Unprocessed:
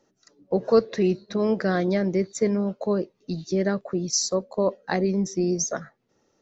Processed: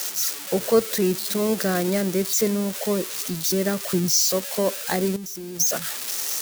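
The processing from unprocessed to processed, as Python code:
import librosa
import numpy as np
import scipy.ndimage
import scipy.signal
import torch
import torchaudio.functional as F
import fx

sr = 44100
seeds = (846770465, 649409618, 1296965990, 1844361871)

y = x + 0.5 * 10.0 ** (-16.0 / 20.0) * np.diff(np.sign(x), prepend=np.sign(x[:1]))
y = fx.peak_eq(y, sr, hz=130.0, db=8.0, octaves=1.8, at=(3.82, 4.25))
y = fx.level_steps(y, sr, step_db=17, at=(5.16, 5.6))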